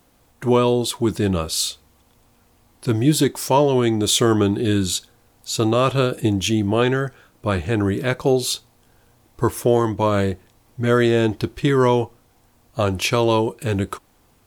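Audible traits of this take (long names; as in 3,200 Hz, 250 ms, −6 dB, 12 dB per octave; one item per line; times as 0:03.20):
background noise floor −58 dBFS
spectral slope −5.0 dB per octave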